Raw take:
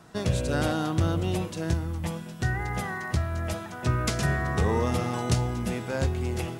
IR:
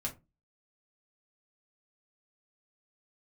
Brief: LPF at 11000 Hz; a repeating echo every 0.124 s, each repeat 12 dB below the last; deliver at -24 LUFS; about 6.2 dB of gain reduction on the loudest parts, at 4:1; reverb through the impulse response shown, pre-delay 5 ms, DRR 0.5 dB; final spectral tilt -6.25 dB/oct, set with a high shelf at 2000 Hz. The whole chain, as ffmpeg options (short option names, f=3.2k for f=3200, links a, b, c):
-filter_complex "[0:a]lowpass=11k,highshelf=f=2k:g=-7.5,acompressor=threshold=-27dB:ratio=4,aecho=1:1:124|248|372:0.251|0.0628|0.0157,asplit=2[a][b];[1:a]atrim=start_sample=2205,adelay=5[c];[b][c]afir=irnorm=-1:irlink=0,volume=-2dB[d];[a][d]amix=inputs=2:normalize=0,volume=4.5dB"